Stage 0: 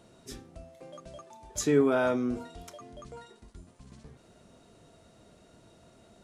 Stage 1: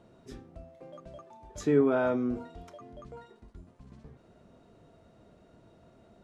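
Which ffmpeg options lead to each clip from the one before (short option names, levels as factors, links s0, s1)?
-af "lowpass=f=1500:p=1"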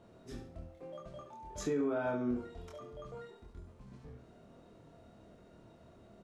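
-filter_complex "[0:a]asplit=2[s0][s1];[s1]adelay=25,volume=0.794[s2];[s0][s2]amix=inputs=2:normalize=0,aecho=1:1:70|140|210|280:0.355|0.124|0.0435|0.0152,alimiter=limit=0.075:level=0:latency=1:release=312,volume=0.75"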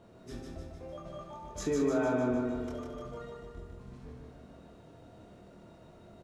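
-af "aecho=1:1:151|302|453|604|755|906|1057|1208:0.668|0.388|0.225|0.13|0.0756|0.0439|0.0254|0.0148,volume=1.33"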